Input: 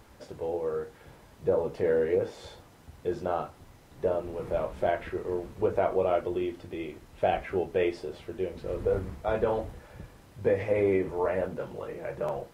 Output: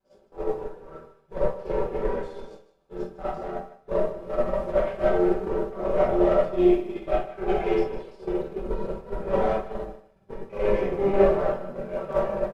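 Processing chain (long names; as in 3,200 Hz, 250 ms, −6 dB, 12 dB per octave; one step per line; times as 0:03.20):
slices reordered back to front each 159 ms, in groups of 2
low-shelf EQ 230 Hz −9 dB
brickwall limiter −23 dBFS, peak gain reduction 8.5 dB
chorus effect 0.41 Hz, delay 19 ms, depth 6.5 ms
in parallel at −3 dB: downward compressor, threshold −46 dBFS, peak gain reduction 15.5 dB
on the sum: notch filter 1,900 Hz, Q 9
asymmetric clip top −37.5 dBFS
comb filter 5.2 ms, depth 65%
comb and all-pass reverb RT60 0.88 s, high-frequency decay 0.4×, pre-delay 5 ms, DRR −3 dB
downward expander −25 dBFS
spectral tilt −2 dB per octave
on a send: feedback echo with a high-pass in the loop 152 ms, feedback 18%, high-pass 420 Hz, level −14 dB
on the sum: level +7 dB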